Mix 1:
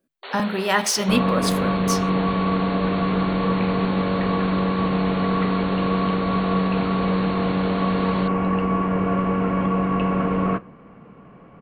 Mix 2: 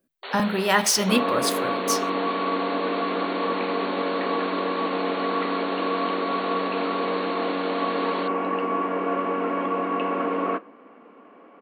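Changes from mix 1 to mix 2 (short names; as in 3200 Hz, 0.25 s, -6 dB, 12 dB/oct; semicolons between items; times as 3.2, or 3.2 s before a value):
second sound: add Chebyshev high-pass 260 Hz, order 4; master: add high shelf 9900 Hz +5.5 dB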